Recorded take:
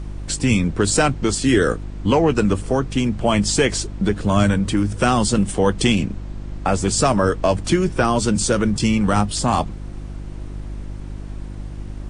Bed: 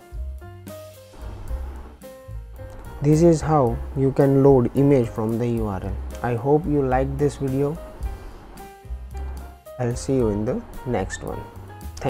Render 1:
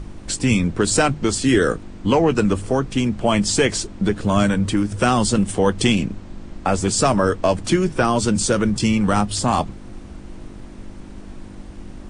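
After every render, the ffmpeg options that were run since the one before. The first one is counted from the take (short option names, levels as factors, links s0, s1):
-af "bandreject=f=50:t=h:w=4,bandreject=f=100:t=h:w=4,bandreject=f=150:t=h:w=4"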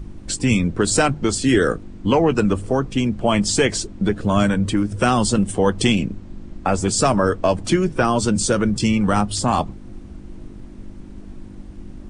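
-af "afftdn=nr=7:nf=-37"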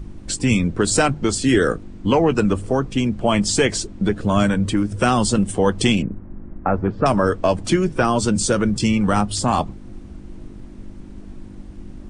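-filter_complex "[0:a]asettb=1/sr,asplit=3[s0][s1][s2];[s0]atrim=end=6.024[s3];[s1]atrim=start=6.02:end=7.06,asetpts=PTS-STARTPTS,afade=t=in:d=0.004:c=qsin,afade=t=out:st=1.036:d=0.004:c=qsin,lowpass=f=1800:w=0.5412,lowpass=f=1800:w=1.3066[s4];[s2]atrim=start=7.056[s5];[s3][s4]acrossfade=d=0.004:c1=hsin:c2=qsin[s6];[s6][s5]acrossfade=d=0.004:c1=qsin:c2=hsin"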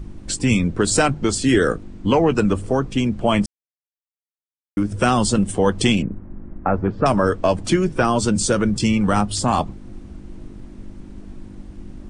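-filter_complex "[0:a]asplit=3[s0][s1][s2];[s0]atrim=end=3.46,asetpts=PTS-STARTPTS,afade=t=out:st=3.456:d=0.004:c=hsin[s3];[s1]atrim=start=3.46:end=4.77,asetpts=PTS-STARTPTS,volume=0[s4];[s2]atrim=start=4.77,asetpts=PTS-STARTPTS,afade=t=in:d=0.004:c=hsin[s5];[s3][s4][s5]concat=n=3:v=0:a=1"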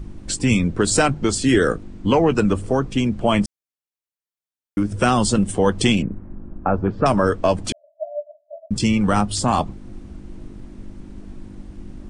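-filter_complex "[0:a]asettb=1/sr,asplit=3[s0][s1][s2];[s0]atrim=end=6.354[s3];[s1]atrim=start=6.35:end=6.87,asetpts=PTS-STARTPTS,afade=t=in:d=0.004:c=qsin,afade=t=out:st=0.516:d=0.004:c=qsin,equalizer=f=2000:w=6.5:g=-14.5[s4];[s2]atrim=start=6.866[s5];[s3][s4]acrossfade=d=0.004:c1=hsin:c2=qsin[s6];[s6][s5]acrossfade=d=0.004:c1=qsin:c2=hsin,asettb=1/sr,asplit=3[s7][s8][s9];[s7]atrim=end=7.724[s10];[s8]atrim=start=7.72:end=8.71,asetpts=PTS-STARTPTS,afade=t=in:d=0.004:c=qsin,afade=t=out:st=0.986:d=0.004:c=qsin,asuperpass=centerf=630:order=12:qfactor=6.5[s11];[s9]atrim=start=8.706[s12];[s10][s11]acrossfade=d=0.004:c1=hsin:c2=qsin[s13];[s13][s12]acrossfade=d=0.004:c1=qsin:c2=hsin"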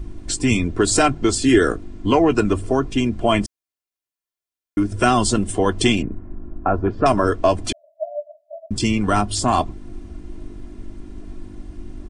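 -af "aecho=1:1:2.9:0.53"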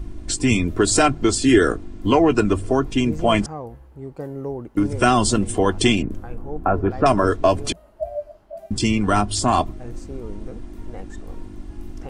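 -filter_complex "[1:a]volume=0.178[s0];[0:a][s0]amix=inputs=2:normalize=0"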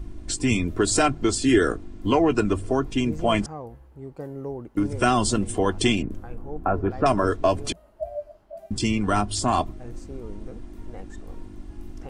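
-af "volume=0.631"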